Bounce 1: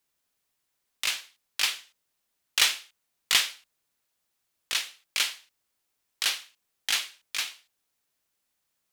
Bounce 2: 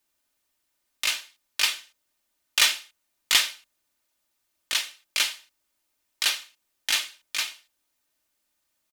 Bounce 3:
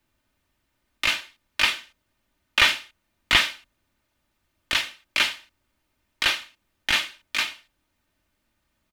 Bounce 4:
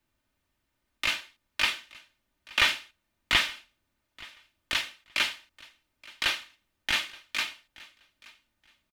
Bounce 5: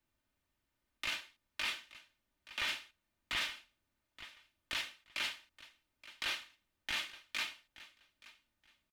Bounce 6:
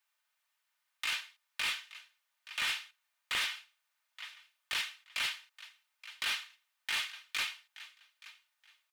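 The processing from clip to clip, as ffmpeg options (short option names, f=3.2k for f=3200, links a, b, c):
-af "aecho=1:1:3.3:0.51,volume=1.5dB"
-filter_complex "[0:a]bass=f=250:g=13,treble=f=4k:g=-12,acrossover=split=410|760|3800[a][b][c][d];[d]alimiter=level_in=3.5dB:limit=-24dB:level=0:latency=1:release=21,volume=-3.5dB[e];[a][b][c][e]amix=inputs=4:normalize=0,volume=7dB"
-af "aecho=1:1:875|1750:0.075|0.015,volume=-5dB"
-af "alimiter=limit=-20dB:level=0:latency=1:release=22,volume=-6dB"
-filter_complex "[0:a]acrossover=split=810|1200[a][b][c];[a]acrusher=bits=5:mix=0:aa=0.000001[d];[c]asoftclip=type=hard:threshold=-35dB[e];[d][b][e]amix=inputs=3:normalize=0,volume=5.5dB"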